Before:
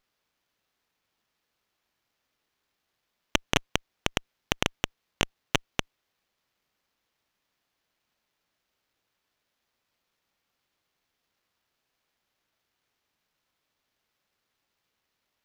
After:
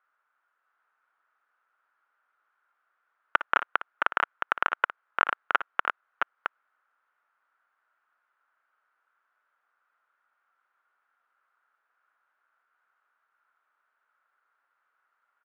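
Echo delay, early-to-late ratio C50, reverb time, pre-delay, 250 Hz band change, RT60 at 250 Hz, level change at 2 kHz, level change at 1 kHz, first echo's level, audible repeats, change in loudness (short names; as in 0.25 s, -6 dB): 58 ms, none, none, none, -14.5 dB, none, +6.0 dB, +9.5 dB, -13.0 dB, 2, +1.5 dB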